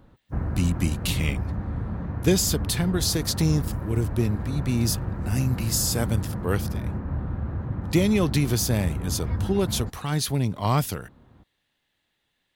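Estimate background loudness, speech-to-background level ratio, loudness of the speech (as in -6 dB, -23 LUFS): -31.0 LUFS, 5.5 dB, -25.5 LUFS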